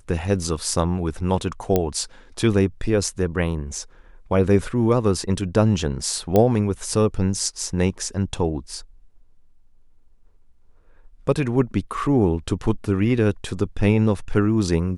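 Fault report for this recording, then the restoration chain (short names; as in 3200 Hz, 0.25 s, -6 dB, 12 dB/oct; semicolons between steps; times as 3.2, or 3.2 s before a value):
1.76 pop -6 dBFS
6.36 pop -6 dBFS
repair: de-click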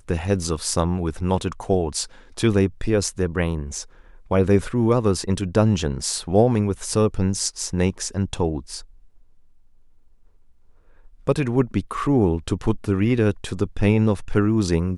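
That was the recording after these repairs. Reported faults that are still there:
none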